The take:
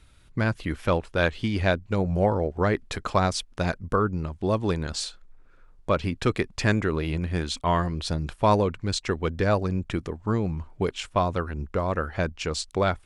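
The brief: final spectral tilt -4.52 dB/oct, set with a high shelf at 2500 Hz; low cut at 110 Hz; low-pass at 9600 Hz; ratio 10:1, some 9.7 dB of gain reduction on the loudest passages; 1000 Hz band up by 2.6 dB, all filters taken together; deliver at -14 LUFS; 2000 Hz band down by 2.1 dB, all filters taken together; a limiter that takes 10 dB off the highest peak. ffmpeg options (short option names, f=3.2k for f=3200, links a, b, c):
-af "highpass=110,lowpass=9.6k,equalizer=f=1k:t=o:g=4,equalizer=f=2k:t=o:g=-8.5,highshelf=f=2.5k:g=8,acompressor=threshold=-24dB:ratio=10,volume=19.5dB,alimiter=limit=-1dB:level=0:latency=1"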